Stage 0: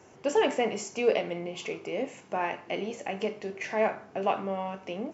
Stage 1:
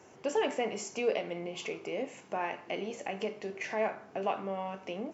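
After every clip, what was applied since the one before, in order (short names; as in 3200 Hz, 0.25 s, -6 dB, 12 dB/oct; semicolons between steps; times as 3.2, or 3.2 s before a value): low shelf 93 Hz -8 dB; in parallel at 0 dB: compressor, threshold -34 dBFS, peak gain reduction 14.5 dB; on the sum: gain -7 dB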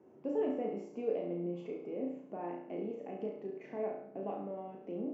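band-pass 270 Hz, Q 1.8; flutter echo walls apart 5.9 m, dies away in 0.59 s; gain +1 dB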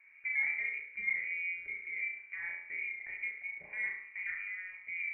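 inverted band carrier 2600 Hz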